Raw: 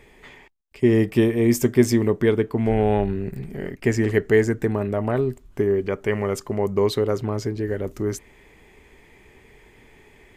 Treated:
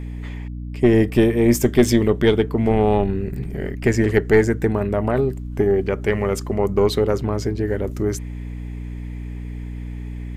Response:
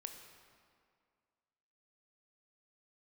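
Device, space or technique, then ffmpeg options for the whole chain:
valve amplifier with mains hum: -filter_complex "[0:a]asettb=1/sr,asplit=3[link_01][link_02][link_03];[link_01]atrim=end=1.684[link_04];[link_02]atrim=start=1.68:end=2.44,asetpts=PTS-STARTPTS,afade=type=in:duration=0.004:curve=qsin,afade=type=out:start_time=0.756:duration=0.004:curve=qsin,equalizer=frequency=3300:width_type=o:width=0.53:gain=9[link_05];[link_03]atrim=start=2.436[link_06];[link_04][link_05]acrossfade=duration=0.004:curve1=hsin:curve2=qsin[link_07];[link_07][link_06]acrossfade=duration=0.004:curve1=qsin:curve2=hsin,aeval=exprs='(tanh(2.51*val(0)+0.45)-tanh(0.45))/2.51':channel_layout=same,aeval=exprs='val(0)+0.0224*(sin(2*PI*60*n/s)+sin(2*PI*2*60*n/s)/2+sin(2*PI*3*60*n/s)/3+sin(2*PI*4*60*n/s)/4+sin(2*PI*5*60*n/s)/5)':channel_layout=same,volume=4.5dB"

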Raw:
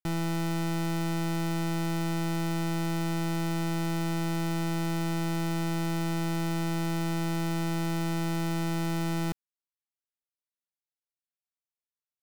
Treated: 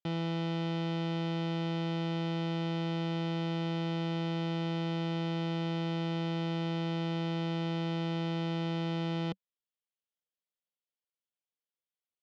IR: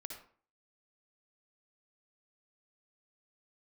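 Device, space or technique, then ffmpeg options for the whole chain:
guitar cabinet: -af "highpass=100,equalizer=frequency=190:width_type=q:width=4:gain=4,equalizer=frequency=510:width_type=q:width=4:gain=9,equalizer=frequency=1600:width_type=q:width=4:gain=-4,equalizer=frequency=3200:width_type=q:width=4:gain=8,lowpass=frequency=4600:width=0.5412,lowpass=frequency=4600:width=1.3066,volume=-4.5dB"

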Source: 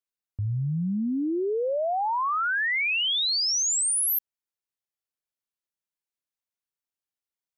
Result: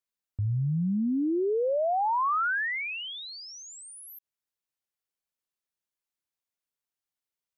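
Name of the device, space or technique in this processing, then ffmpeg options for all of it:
de-esser from a sidechain: -filter_complex "[0:a]asplit=2[link_01][link_02];[link_02]highpass=5200,apad=whole_len=333996[link_03];[link_01][link_03]sidechaincompress=threshold=-47dB:ratio=8:attack=3.4:release=46"

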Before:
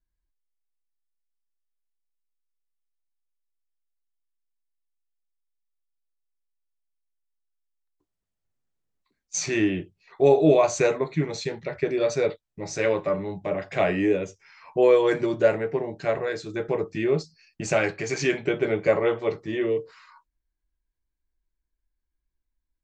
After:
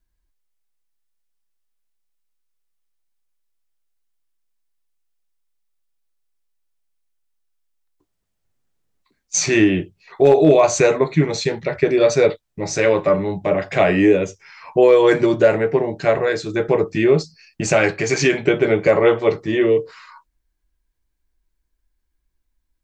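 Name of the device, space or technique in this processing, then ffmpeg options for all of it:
clipper into limiter: -af "asoftclip=type=hard:threshold=-9dB,alimiter=limit=-13dB:level=0:latency=1:release=103,volume=9dB"

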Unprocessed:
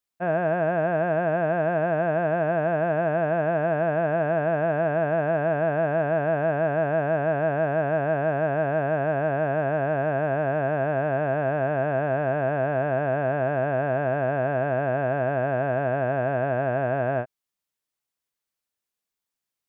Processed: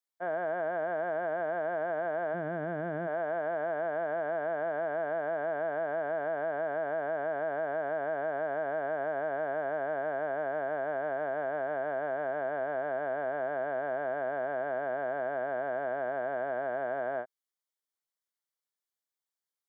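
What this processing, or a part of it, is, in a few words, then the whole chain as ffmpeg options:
PA system with an anti-feedback notch: -filter_complex "[0:a]highpass=370,asplit=3[link_01][link_02][link_03];[link_01]afade=type=out:start_time=2.33:duration=0.02[link_04];[link_02]asubboost=boost=9.5:cutoff=240,afade=type=in:start_time=2.33:duration=0.02,afade=type=out:start_time=3.06:duration=0.02[link_05];[link_03]afade=type=in:start_time=3.06:duration=0.02[link_06];[link_04][link_05][link_06]amix=inputs=3:normalize=0,highpass=110,asuperstop=centerf=2600:order=4:qfactor=4.5,alimiter=limit=-19dB:level=0:latency=1,volume=-6.5dB"

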